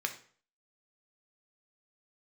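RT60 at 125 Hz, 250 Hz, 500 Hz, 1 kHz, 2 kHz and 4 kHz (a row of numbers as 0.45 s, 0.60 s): 0.50 s, 0.45 s, 0.50 s, 0.45 s, 0.45 s, 0.40 s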